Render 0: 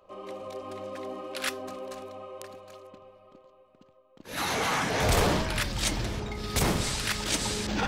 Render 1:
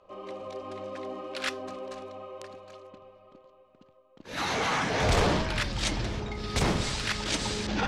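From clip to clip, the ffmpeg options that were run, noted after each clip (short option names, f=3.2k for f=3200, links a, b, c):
-af "lowpass=6.3k"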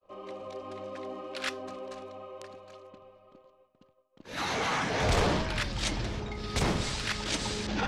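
-af "agate=range=-33dB:threshold=-54dB:ratio=3:detection=peak,volume=-2dB"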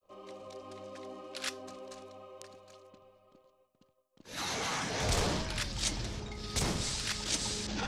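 -af "bass=f=250:g=2,treble=f=4k:g=11,volume=-6.5dB"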